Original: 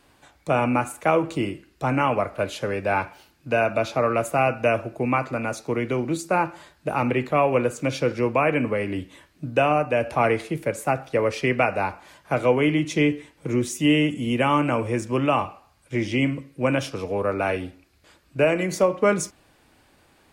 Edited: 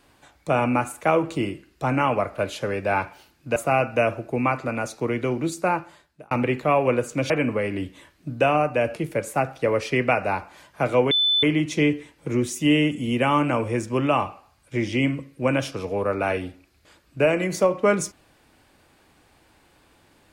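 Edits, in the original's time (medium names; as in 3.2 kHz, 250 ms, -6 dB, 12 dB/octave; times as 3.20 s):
3.56–4.23 s: delete
6.29–6.98 s: fade out
7.97–8.46 s: delete
10.12–10.47 s: delete
12.62 s: add tone 3.51 kHz -17 dBFS 0.32 s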